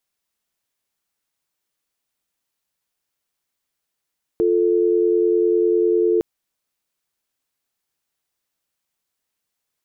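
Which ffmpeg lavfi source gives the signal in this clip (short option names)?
-f lavfi -i "aevalsrc='0.141*(sin(2*PI*350*t)+sin(2*PI*440*t))':d=1.81:s=44100"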